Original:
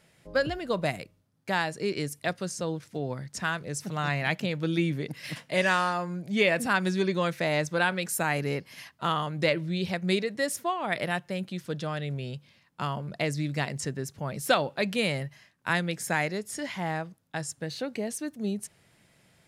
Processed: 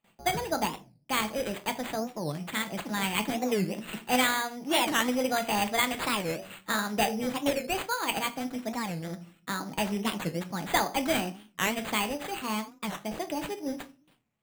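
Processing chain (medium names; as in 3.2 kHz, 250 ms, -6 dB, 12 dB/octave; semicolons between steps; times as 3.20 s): gate with hold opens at -51 dBFS; flange 0.29 Hz, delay 6.5 ms, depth 5.7 ms, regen +75%; speed mistake 33 rpm record played at 45 rpm; simulated room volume 250 m³, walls furnished, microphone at 0.72 m; careless resampling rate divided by 8×, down none, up hold; warped record 45 rpm, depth 250 cents; trim +3 dB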